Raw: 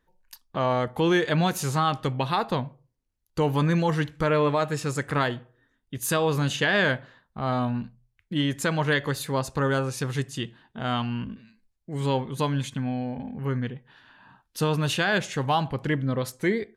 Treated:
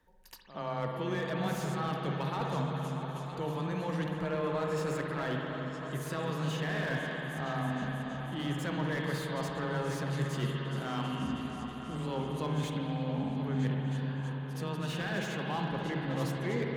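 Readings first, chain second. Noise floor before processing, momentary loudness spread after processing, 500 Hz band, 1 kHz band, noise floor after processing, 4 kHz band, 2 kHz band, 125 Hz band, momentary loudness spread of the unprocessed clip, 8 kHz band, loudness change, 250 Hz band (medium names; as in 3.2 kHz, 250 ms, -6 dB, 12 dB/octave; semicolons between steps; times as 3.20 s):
-74 dBFS, 5 LU, -8.5 dB, -8.5 dB, -40 dBFS, -10.0 dB, -9.5 dB, -6.0 dB, 11 LU, -12.5 dB, -8.5 dB, -6.5 dB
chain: reverse; compression 16:1, threshold -34 dBFS, peak gain reduction 17 dB; reverse; pre-echo 73 ms -14 dB; frequency shift +13 Hz; on a send: delay with an opening low-pass 320 ms, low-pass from 400 Hz, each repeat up 2 oct, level -6 dB; on the sum: spring tank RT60 3.6 s, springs 58 ms, chirp 30 ms, DRR 1 dB; slew-rate limiter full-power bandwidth 32 Hz; trim +1.5 dB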